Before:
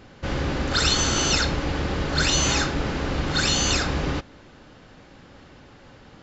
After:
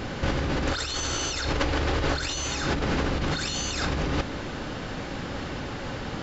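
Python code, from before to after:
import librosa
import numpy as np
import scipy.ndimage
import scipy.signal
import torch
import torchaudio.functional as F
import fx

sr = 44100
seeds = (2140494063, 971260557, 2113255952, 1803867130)

y = fx.peak_eq(x, sr, hz=190.0, db=-12.5, octaves=0.5, at=(0.66, 2.5))
y = fx.over_compress(y, sr, threshold_db=-33.0, ratio=-1.0)
y = y * librosa.db_to_amplitude(6.0)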